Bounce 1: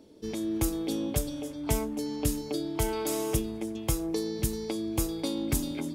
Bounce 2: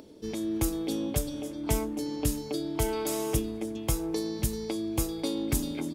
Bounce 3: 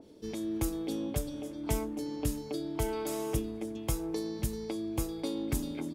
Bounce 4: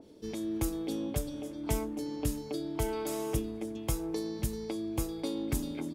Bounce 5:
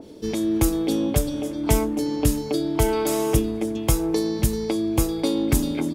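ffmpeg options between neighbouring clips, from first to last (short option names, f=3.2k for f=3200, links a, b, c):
-filter_complex "[0:a]acompressor=mode=upward:threshold=-45dB:ratio=2.5,asplit=2[a][b];[b]adelay=1108,volume=-13dB,highshelf=f=4k:g=-24.9[c];[a][c]amix=inputs=2:normalize=0"
-af "adynamicequalizer=threshold=0.00355:dfrequency=2600:dqfactor=0.7:tfrequency=2600:tqfactor=0.7:attack=5:release=100:ratio=0.375:range=2:mode=cutabove:tftype=highshelf,volume=-3.5dB"
-af anull
-af "acontrast=64,volume=5.5dB"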